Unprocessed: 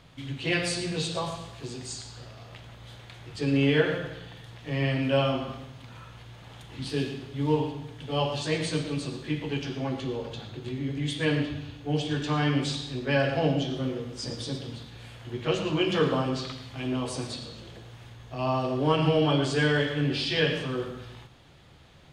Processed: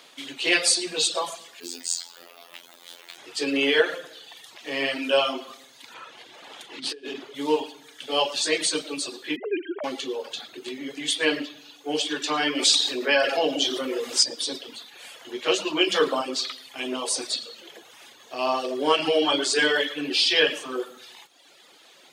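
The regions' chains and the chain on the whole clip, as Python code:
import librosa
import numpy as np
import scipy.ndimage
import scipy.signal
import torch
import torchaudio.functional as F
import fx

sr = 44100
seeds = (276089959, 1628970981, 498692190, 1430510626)

y = fx.chain(x, sr, fx.quant_companded(bits=6),
    fx.robotise(hz=86.0), at=(1.6, 3.18))
y = fx.chain(y, sr, fx.lowpass(hz=3300.0, slope=6),
    fx.over_compress(threshold_db=-36.0, ratio=-1.0), at=(5.94, 7.35))
y = fx.chain(y, sr, fx.sine_speech(),
    fx.lowpass(hz=1600.0, slope=12), at=(9.36, 9.84))
y = fx.chain(y, sr, fx.low_shelf(hz=160.0, db=-9.0),
    fx.env_flatten(amount_pct=50), at=(12.55, 14.23))
y = fx.dereverb_blind(y, sr, rt60_s=1.0)
y = scipy.signal.sosfilt(scipy.signal.butter(4, 300.0, 'highpass', fs=sr, output='sos'), y)
y = fx.high_shelf(y, sr, hz=3300.0, db=12.0)
y = y * librosa.db_to_amplitude(4.0)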